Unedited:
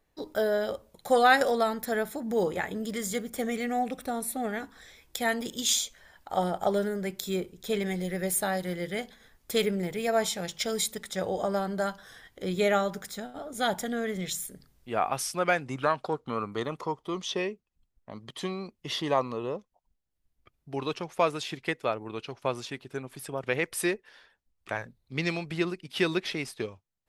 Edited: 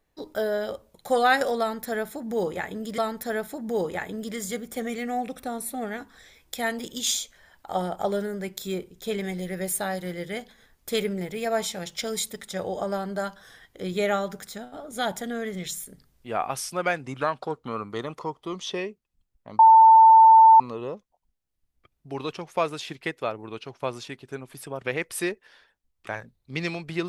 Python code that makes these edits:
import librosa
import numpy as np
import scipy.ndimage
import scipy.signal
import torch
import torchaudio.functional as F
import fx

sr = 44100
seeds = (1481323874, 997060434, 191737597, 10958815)

y = fx.edit(x, sr, fx.repeat(start_s=1.6, length_s=1.38, count=2),
    fx.bleep(start_s=18.21, length_s=1.01, hz=893.0, db=-9.0), tone=tone)